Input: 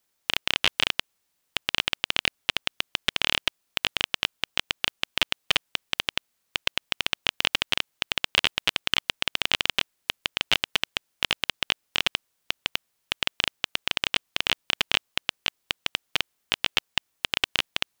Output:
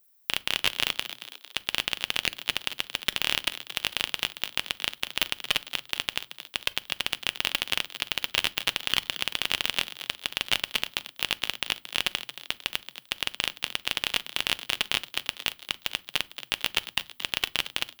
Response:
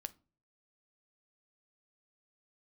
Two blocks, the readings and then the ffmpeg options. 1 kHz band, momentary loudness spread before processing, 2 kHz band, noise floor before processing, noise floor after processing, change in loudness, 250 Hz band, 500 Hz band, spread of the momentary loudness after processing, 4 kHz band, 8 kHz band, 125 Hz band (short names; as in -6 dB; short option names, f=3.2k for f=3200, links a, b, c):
-3.0 dB, 7 LU, -2.5 dB, -75 dBFS, -59 dBFS, -2.0 dB, -3.0 dB, -3.0 dB, 6 LU, -2.0 dB, +1.5 dB, -2.5 dB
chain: -filter_complex "[0:a]asplit=6[a][b][c][d][e][f];[b]adelay=226,afreqshift=120,volume=-12.5dB[g];[c]adelay=452,afreqshift=240,volume=-18.5dB[h];[d]adelay=678,afreqshift=360,volume=-24.5dB[i];[e]adelay=904,afreqshift=480,volume=-30.6dB[j];[f]adelay=1130,afreqshift=600,volume=-36.6dB[k];[a][g][h][i][j][k]amix=inputs=6:normalize=0,asplit=2[l][m];[1:a]atrim=start_sample=2205,highshelf=f=7.3k:g=12[n];[m][n]afir=irnorm=-1:irlink=0,volume=6dB[o];[l][o]amix=inputs=2:normalize=0,aexciter=amount=1.5:drive=8.6:freq=10k,volume=-10.5dB"